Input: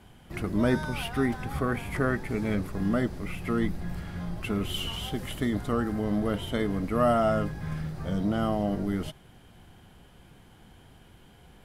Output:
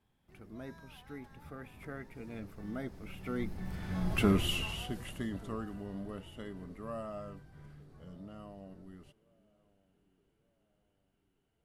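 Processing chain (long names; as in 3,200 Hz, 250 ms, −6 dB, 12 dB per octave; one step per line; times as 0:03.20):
source passing by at 0:04.22, 21 m/s, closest 4.5 metres
on a send: feedback echo with a band-pass in the loop 1,187 ms, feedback 48%, band-pass 380 Hz, level −22.5 dB
on the sum: level +3.5 dB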